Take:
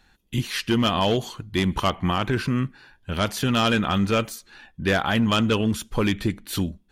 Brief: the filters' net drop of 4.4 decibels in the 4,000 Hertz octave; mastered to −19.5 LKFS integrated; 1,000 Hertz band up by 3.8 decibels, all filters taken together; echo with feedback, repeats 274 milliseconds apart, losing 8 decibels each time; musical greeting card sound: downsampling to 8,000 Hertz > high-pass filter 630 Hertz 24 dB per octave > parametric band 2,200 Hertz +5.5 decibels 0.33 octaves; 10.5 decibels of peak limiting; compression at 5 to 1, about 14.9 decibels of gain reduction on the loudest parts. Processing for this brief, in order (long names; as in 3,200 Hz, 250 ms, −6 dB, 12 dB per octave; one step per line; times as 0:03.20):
parametric band 1,000 Hz +5.5 dB
parametric band 4,000 Hz −7.5 dB
downward compressor 5 to 1, threshold −34 dBFS
brickwall limiter −32.5 dBFS
repeating echo 274 ms, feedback 40%, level −8 dB
downsampling to 8,000 Hz
high-pass filter 630 Hz 24 dB per octave
parametric band 2,200 Hz +5.5 dB 0.33 octaves
level +26 dB